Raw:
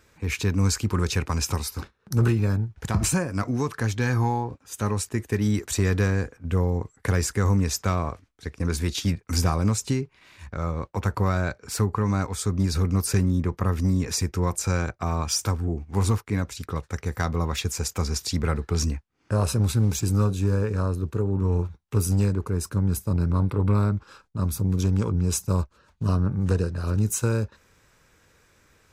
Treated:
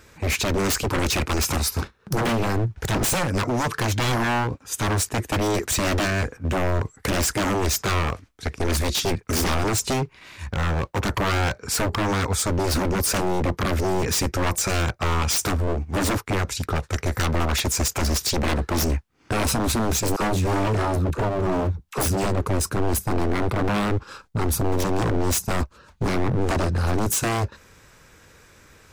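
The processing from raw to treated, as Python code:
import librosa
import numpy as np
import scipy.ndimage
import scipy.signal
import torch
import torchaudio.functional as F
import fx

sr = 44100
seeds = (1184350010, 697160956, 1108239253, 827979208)

y = fx.dispersion(x, sr, late='lows', ms=48.0, hz=620.0, at=(20.16, 22.26))
y = 10.0 ** (-25.5 / 20.0) * (np.abs((y / 10.0 ** (-25.5 / 20.0) + 3.0) % 4.0 - 2.0) - 1.0)
y = y * 10.0 ** (8.5 / 20.0)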